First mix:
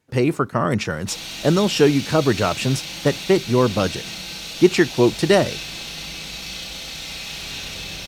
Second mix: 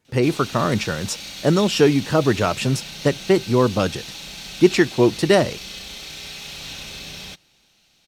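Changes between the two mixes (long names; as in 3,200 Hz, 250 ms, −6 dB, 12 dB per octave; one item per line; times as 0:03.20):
background: entry −0.85 s
reverb: off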